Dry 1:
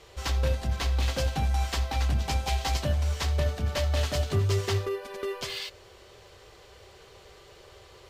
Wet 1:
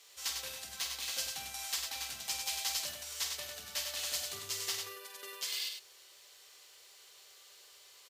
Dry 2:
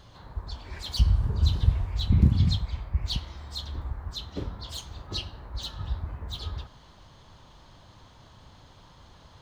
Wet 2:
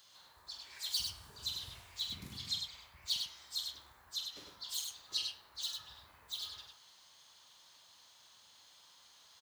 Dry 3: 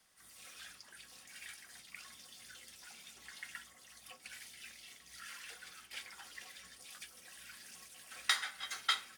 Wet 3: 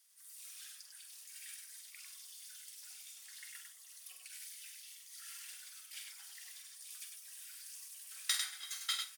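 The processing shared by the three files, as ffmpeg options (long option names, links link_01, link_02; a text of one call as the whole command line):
ffmpeg -i in.wav -af "aderivative,aecho=1:1:46.65|99.13:0.398|0.562,volume=2.5dB" out.wav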